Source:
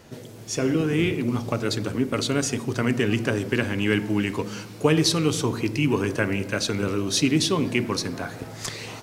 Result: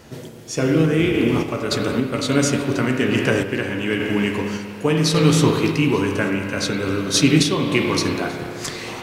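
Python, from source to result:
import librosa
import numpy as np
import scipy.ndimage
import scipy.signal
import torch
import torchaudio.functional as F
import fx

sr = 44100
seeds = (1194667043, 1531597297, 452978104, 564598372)

p1 = fx.doubler(x, sr, ms=14.0, db=-11.0)
p2 = fx.rev_spring(p1, sr, rt60_s=2.5, pass_ms=(31, 44), chirp_ms=75, drr_db=1.5)
p3 = fx.tremolo_random(p2, sr, seeds[0], hz=3.5, depth_pct=55)
p4 = p3 + fx.echo_single(p3, sr, ms=885, db=-23.5, dry=0)
y = F.gain(torch.from_numpy(p4), 5.5).numpy()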